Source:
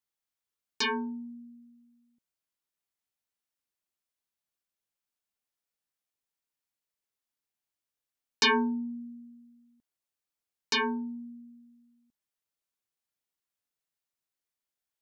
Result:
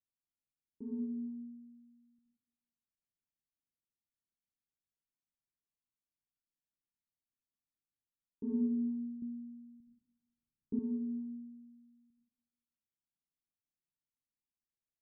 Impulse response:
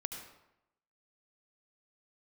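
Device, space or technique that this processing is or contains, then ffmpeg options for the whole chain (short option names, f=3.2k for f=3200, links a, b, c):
next room: -filter_complex "[0:a]lowpass=f=290:w=0.5412,lowpass=f=290:w=1.3066[a];[1:a]atrim=start_sample=2205[b];[a][b]afir=irnorm=-1:irlink=0,asettb=1/sr,asplit=3[c][d][e];[c]atrim=end=9.224[f];[d]atrim=start=9.22:end=10.79,asetpts=PTS-STARTPTS,afade=t=in:d=0.004:c=qsin,afade=t=out:st=1.566:d=0.004:c=qsin,lowshelf=f=460:g=11[g];[e]atrim=start=10.786[h];[f][g]acrossfade=d=0.004:c1=hsin:c2=qsin[i];[i][h]acrossfade=d=0.004:c1=qsin:c2=hsin"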